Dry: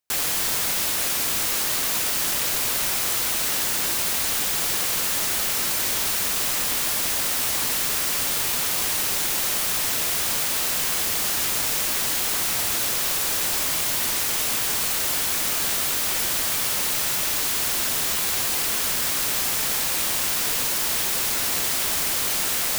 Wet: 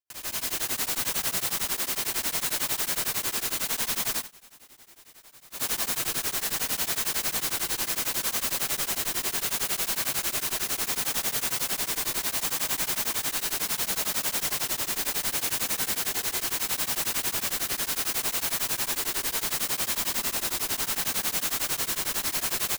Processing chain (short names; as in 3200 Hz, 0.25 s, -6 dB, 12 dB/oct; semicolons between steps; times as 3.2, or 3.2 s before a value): 1.05–1.76 spectral contrast lowered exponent 0.12; notch 700 Hz, Q 12; comb 2.9 ms, depth 92%; rotary speaker horn 0.7 Hz; wrapped overs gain 23 dB; reverb RT60 2.8 s, pre-delay 98 ms, DRR -10.5 dB; 4.16–5.64 dip -23.5 dB, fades 0.12 s; beating tremolo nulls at 11 Hz; gain -8 dB